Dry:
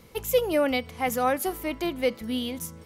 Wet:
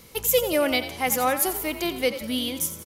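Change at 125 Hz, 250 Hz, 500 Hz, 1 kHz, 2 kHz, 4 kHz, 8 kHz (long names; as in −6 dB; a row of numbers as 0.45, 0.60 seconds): +0.5, +0.5, +0.5, +1.5, +4.0, +6.5, +10.0 decibels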